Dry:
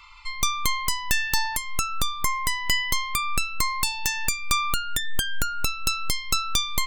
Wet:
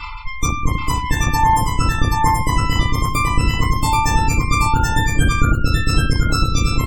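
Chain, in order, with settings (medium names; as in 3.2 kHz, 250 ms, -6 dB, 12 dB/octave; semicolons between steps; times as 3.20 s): FDN reverb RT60 0.39 s, low-frequency decay 1.4×, high-frequency decay 0.65×, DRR -4.5 dB; in parallel at -11.5 dB: Schmitt trigger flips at -20 dBFS; on the sum: tilt shelf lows +6.5 dB, about 750 Hz; Chebyshev shaper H 3 -22 dB, 4 -19 dB, 5 -25 dB, 6 -42 dB, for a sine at -3.5 dBFS; dynamic bell 3 kHz, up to -6 dB, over -35 dBFS, Q 0.93; spectral gate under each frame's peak -30 dB strong; reverse; upward compressor, threshold -17 dBFS; reverse; multi-tap echo 55/780 ms -18/-3 dB; trim +4 dB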